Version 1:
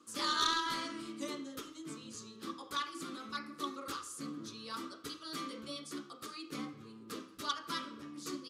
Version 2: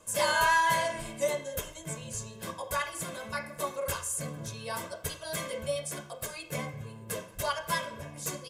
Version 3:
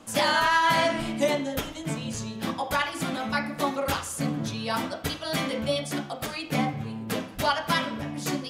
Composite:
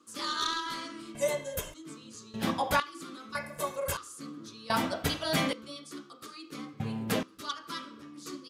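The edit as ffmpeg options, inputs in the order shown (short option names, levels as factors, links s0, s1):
-filter_complex "[1:a]asplit=2[s0][s1];[2:a]asplit=3[s2][s3][s4];[0:a]asplit=6[s5][s6][s7][s8][s9][s10];[s5]atrim=end=1.152[s11];[s0]atrim=start=1.148:end=1.742[s12];[s6]atrim=start=1.738:end=2.342[s13];[s2]atrim=start=2.338:end=2.802[s14];[s7]atrim=start=2.798:end=3.352[s15];[s1]atrim=start=3.348:end=3.972[s16];[s8]atrim=start=3.968:end=4.702[s17];[s3]atrim=start=4.698:end=5.532[s18];[s9]atrim=start=5.528:end=6.802[s19];[s4]atrim=start=6.798:end=7.232[s20];[s10]atrim=start=7.228[s21];[s11][s12]acrossfade=d=0.004:c1=hsin:c2=hsin[s22];[s22][s13]acrossfade=d=0.004:c1=hsin:c2=hsin[s23];[s23][s14]acrossfade=d=0.004:c1=hsin:c2=hsin[s24];[s24][s15]acrossfade=d=0.004:c1=hsin:c2=hsin[s25];[s25][s16]acrossfade=d=0.004:c1=hsin:c2=hsin[s26];[s26][s17]acrossfade=d=0.004:c1=hsin:c2=hsin[s27];[s27][s18]acrossfade=d=0.004:c1=hsin:c2=hsin[s28];[s28][s19]acrossfade=d=0.004:c1=hsin:c2=hsin[s29];[s29][s20]acrossfade=d=0.004:c1=hsin:c2=hsin[s30];[s30][s21]acrossfade=d=0.004:c1=hsin:c2=hsin"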